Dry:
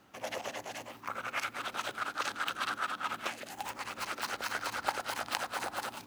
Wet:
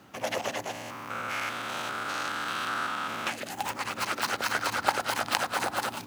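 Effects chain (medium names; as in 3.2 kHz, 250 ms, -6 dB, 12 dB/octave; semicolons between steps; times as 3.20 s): 0.71–3.27 s: spectrogram pixelated in time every 200 ms; high-pass 100 Hz 12 dB/octave; bass shelf 150 Hz +8.5 dB; trim +7 dB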